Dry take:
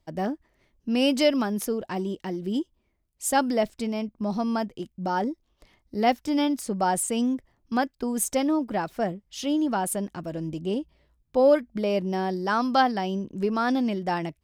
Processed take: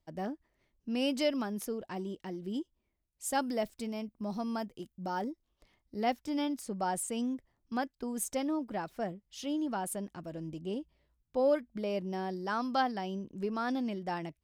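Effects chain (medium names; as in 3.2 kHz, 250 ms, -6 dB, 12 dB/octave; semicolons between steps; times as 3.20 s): 3.32–5.31 s: treble shelf 10 kHz +11.5 dB; trim -9 dB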